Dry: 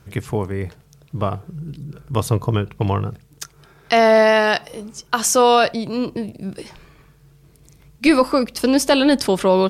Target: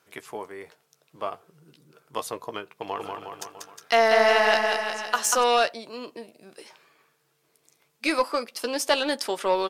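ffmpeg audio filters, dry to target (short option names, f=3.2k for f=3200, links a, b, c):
-filter_complex "[0:a]highpass=510,aeval=exprs='0.75*(cos(1*acos(clip(val(0)/0.75,-1,1)))-cos(1*PI/2))+0.0473*(cos(3*acos(clip(val(0)/0.75,-1,1)))-cos(3*PI/2))+0.0188*(cos(7*acos(clip(val(0)/0.75,-1,1)))-cos(7*PI/2))':c=same,asplit=2[a][b];[b]adelay=13,volume=-11dB[c];[a][c]amix=inputs=2:normalize=0,asplit=3[d][e][f];[d]afade=t=out:st=2.96:d=0.02[g];[e]aecho=1:1:190|361|514.9|653.4|778.1:0.631|0.398|0.251|0.158|0.1,afade=t=in:st=2.96:d=0.02,afade=t=out:st=5.42:d=0.02[h];[f]afade=t=in:st=5.42:d=0.02[i];[g][h][i]amix=inputs=3:normalize=0,volume=-3.5dB"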